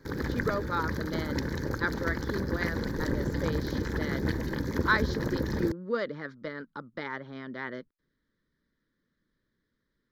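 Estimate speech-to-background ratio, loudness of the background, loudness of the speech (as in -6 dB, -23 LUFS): -2.5 dB, -32.5 LUFS, -35.0 LUFS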